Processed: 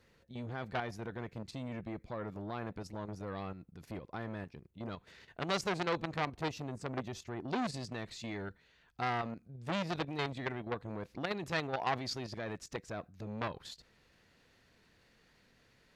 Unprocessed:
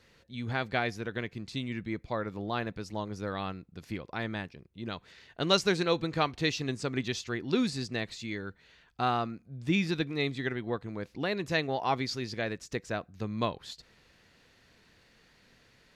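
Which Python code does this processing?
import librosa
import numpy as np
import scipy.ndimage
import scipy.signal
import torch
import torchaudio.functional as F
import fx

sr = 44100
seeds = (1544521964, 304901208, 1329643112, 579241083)

y = fx.peak_eq(x, sr, hz=4000.0, db=fx.steps((0.0, -5.5), (6.15, -12.5), (7.48, -2.5)), octaves=2.4)
y = fx.level_steps(y, sr, step_db=10)
y = fx.transformer_sat(y, sr, knee_hz=1900.0)
y = F.gain(torch.from_numpy(y), 2.5).numpy()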